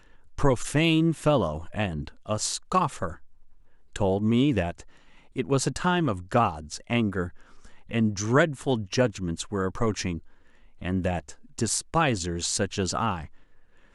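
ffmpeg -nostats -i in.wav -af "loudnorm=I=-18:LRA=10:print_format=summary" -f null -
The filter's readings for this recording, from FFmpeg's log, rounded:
Input Integrated:    -26.8 LUFS
Input True Peak:      -6.9 dBTP
Input LRA:             2.2 LU
Input Threshold:     -37.6 LUFS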